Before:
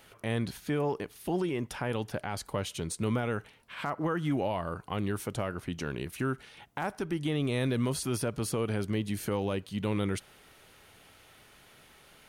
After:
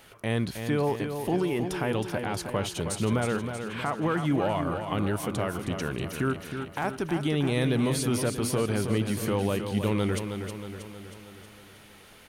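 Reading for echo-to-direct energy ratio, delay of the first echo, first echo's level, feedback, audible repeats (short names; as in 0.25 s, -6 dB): -6.0 dB, 0.317 s, -7.5 dB, 57%, 6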